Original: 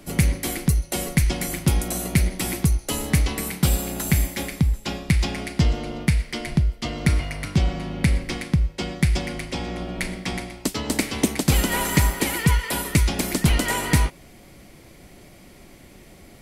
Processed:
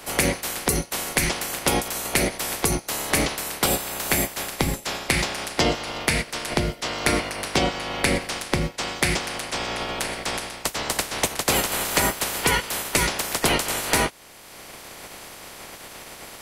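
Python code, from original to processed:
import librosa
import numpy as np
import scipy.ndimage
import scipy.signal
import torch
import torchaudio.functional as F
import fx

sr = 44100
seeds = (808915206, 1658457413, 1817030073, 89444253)

y = fx.spec_clip(x, sr, under_db=24)
y = fx.peak_eq(y, sr, hz=600.0, db=4.5, octaves=2.5)
y = fx.band_squash(y, sr, depth_pct=40)
y = y * librosa.db_to_amplitude(-4.0)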